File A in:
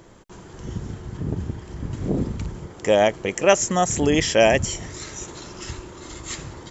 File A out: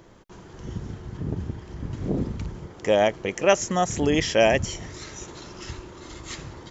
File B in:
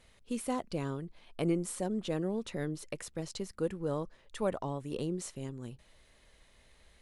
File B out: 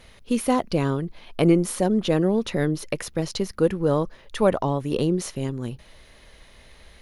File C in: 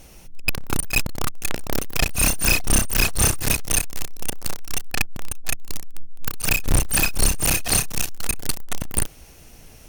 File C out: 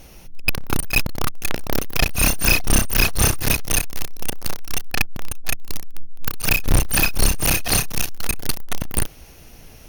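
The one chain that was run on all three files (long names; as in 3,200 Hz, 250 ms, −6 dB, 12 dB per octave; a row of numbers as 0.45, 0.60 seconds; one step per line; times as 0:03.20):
parametric band 7,900 Hz −12 dB 0.27 octaves
normalise the peak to −6 dBFS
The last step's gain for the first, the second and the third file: −2.5, +13.0, +2.5 decibels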